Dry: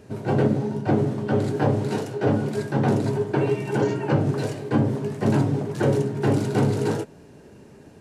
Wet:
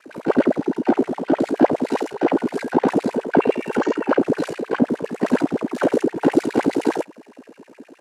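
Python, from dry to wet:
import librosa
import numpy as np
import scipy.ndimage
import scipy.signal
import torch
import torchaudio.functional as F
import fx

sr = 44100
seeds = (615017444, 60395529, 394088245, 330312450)

y = x * np.sin(2.0 * np.pi * 29.0 * np.arange(len(x)) / sr)
y = fx.filter_lfo_highpass(y, sr, shape='sine', hz=9.7, low_hz=240.0, high_hz=2500.0, q=5.9)
y = F.gain(torch.from_numpy(y), 2.5).numpy()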